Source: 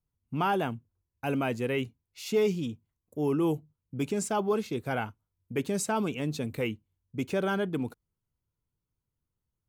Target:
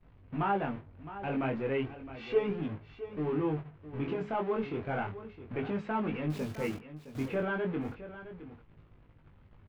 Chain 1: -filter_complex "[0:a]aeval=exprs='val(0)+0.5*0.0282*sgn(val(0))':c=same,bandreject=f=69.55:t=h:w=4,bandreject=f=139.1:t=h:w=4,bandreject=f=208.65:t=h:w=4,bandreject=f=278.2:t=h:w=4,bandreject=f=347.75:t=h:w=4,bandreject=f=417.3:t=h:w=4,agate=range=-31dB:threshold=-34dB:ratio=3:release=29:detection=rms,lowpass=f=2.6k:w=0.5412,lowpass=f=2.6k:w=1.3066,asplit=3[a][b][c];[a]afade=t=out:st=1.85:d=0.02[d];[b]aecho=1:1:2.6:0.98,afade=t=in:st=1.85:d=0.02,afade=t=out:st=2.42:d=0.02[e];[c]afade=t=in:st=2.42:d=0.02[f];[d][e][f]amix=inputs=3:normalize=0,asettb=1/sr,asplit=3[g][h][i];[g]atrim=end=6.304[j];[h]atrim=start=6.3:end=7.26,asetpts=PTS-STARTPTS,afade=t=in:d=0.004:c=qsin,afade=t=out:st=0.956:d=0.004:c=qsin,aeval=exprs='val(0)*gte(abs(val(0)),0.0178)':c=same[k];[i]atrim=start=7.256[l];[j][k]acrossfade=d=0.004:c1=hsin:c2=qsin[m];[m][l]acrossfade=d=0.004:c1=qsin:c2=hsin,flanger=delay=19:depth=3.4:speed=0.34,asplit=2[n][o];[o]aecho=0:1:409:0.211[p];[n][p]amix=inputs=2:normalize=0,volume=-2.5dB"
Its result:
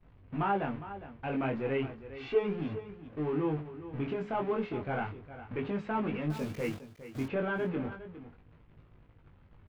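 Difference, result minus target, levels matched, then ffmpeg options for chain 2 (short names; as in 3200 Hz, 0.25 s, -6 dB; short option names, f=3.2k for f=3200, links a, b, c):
echo 0.255 s early
-filter_complex "[0:a]aeval=exprs='val(0)+0.5*0.0282*sgn(val(0))':c=same,bandreject=f=69.55:t=h:w=4,bandreject=f=139.1:t=h:w=4,bandreject=f=208.65:t=h:w=4,bandreject=f=278.2:t=h:w=4,bandreject=f=347.75:t=h:w=4,bandreject=f=417.3:t=h:w=4,agate=range=-31dB:threshold=-34dB:ratio=3:release=29:detection=rms,lowpass=f=2.6k:w=0.5412,lowpass=f=2.6k:w=1.3066,asplit=3[a][b][c];[a]afade=t=out:st=1.85:d=0.02[d];[b]aecho=1:1:2.6:0.98,afade=t=in:st=1.85:d=0.02,afade=t=out:st=2.42:d=0.02[e];[c]afade=t=in:st=2.42:d=0.02[f];[d][e][f]amix=inputs=3:normalize=0,asettb=1/sr,asplit=3[g][h][i];[g]atrim=end=6.304[j];[h]atrim=start=6.3:end=7.26,asetpts=PTS-STARTPTS,afade=t=in:d=0.004:c=qsin,afade=t=out:st=0.956:d=0.004:c=qsin,aeval=exprs='val(0)*gte(abs(val(0)),0.0178)':c=same[k];[i]atrim=start=7.256[l];[j][k]acrossfade=d=0.004:c1=hsin:c2=qsin[m];[m][l]acrossfade=d=0.004:c1=qsin:c2=hsin,flanger=delay=19:depth=3.4:speed=0.34,asplit=2[n][o];[o]aecho=0:1:664:0.211[p];[n][p]amix=inputs=2:normalize=0,volume=-2.5dB"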